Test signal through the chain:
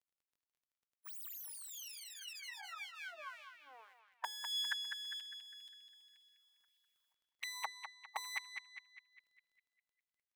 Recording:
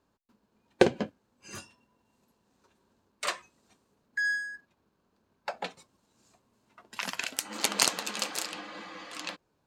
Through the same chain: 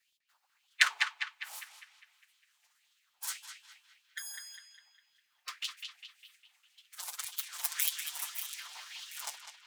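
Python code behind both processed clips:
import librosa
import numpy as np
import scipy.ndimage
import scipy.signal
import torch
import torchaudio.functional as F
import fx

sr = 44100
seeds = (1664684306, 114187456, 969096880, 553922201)

y = fx.lower_of_two(x, sr, delay_ms=6.2)
y = scipy.signal.sosfilt(scipy.signal.butter(4, 67.0, 'highpass', fs=sr, output='sos'), y)
y = fx.spec_gate(y, sr, threshold_db=-15, keep='weak')
y = fx.high_shelf(y, sr, hz=5700.0, db=9.0)
y = fx.hum_notches(y, sr, base_hz=60, count=8)
y = fx.rider(y, sr, range_db=3, speed_s=2.0)
y = fx.filter_lfo_highpass(y, sr, shape='sine', hz=1.8, low_hz=820.0, high_hz=3300.0, q=4.3)
y = fx.dmg_crackle(y, sr, seeds[0], per_s=20.0, level_db=-66.0)
y = fx.echo_banded(y, sr, ms=202, feedback_pct=52, hz=2400.0, wet_db=-5.0)
y = F.gain(torch.from_numpy(y), -1.5).numpy()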